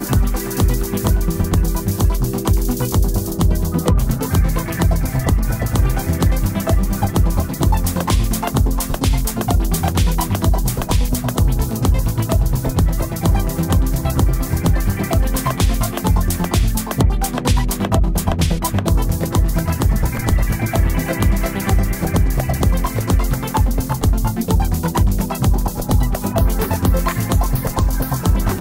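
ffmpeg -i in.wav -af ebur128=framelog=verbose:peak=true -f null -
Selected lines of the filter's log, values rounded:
Integrated loudness:
  I:         -18.5 LUFS
  Threshold: -28.5 LUFS
Loudness range:
  LRA:         0.4 LU
  Threshold: -38.5 LUFS
  LRA low:   -18.7 LUFS
  LRA high:  -18.2 LUFS
True peak:
  Peak:       -4.0 dBFS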